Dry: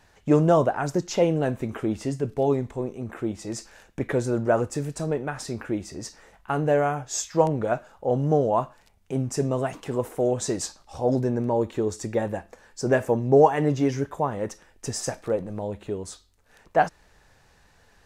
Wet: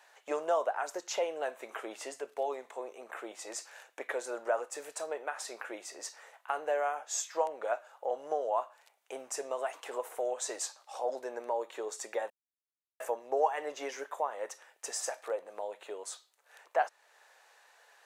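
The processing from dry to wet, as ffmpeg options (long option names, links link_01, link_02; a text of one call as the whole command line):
ffmpeg -i in.wav -filter_complex "[0:a]asplit=3[link_01][link_02][link_03];[link_01]atrim=end=12.3,asetpts=PTS-STARTPTS,afade=type=out:start_time=12.296:duration=0.004:curve=hsin[link_04];[link_02]atrim=start=12.3:end=13,asetpts=PTS-STARTPTS,volume=0[link_05];[link_03]atrim=start=13,asetpts=PTS-STARTPTS,afade=type=in:duration=0.004:curve=hsin[link_06];[link_04][link_05][link_06]concat=n=3:v=0:a=1,highpass=frequency=550:width=0.5412,highpass=frequency=550:width=1.3066,equalizer=frequency=5100:width_type=o:width=0.48:gain=-4,acompressor=threshold=-39dB:ratio=1.5" out.wav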